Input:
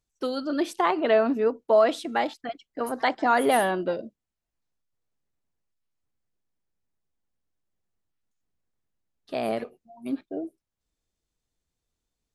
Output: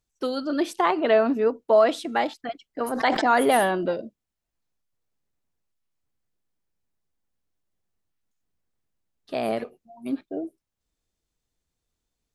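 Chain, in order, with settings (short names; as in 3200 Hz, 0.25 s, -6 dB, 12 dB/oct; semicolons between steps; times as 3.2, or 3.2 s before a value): 2.85–3.86 sustainer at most 44 dB/s; gain +1.5 dB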